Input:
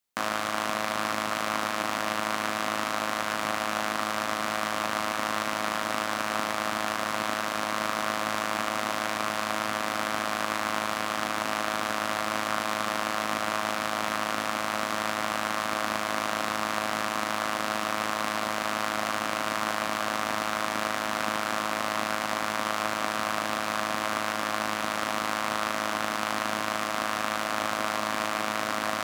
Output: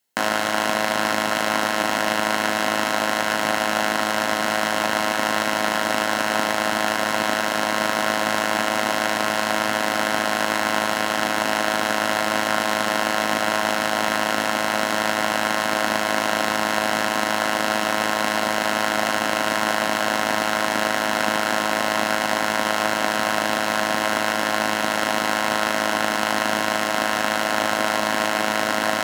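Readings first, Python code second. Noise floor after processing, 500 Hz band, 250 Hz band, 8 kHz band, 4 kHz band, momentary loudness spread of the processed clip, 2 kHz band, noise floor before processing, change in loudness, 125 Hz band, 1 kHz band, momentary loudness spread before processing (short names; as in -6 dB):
-24 dBFS, +9.0 dB, +8.0 dB, +7.5 dB, +8.0 dB, 0 LU, +8.5 dB, -31 dBFS, +7.5 dB, +6.5 dB, +6.5 dB, 1 LU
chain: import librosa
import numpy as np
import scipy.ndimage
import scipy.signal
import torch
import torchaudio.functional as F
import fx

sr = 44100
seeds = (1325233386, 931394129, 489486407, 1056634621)

y = fx.notch_comb(x, sr, f0_hz=1200.0)
y = F.gain(torch.from_numpy(y), 9.0).numpy()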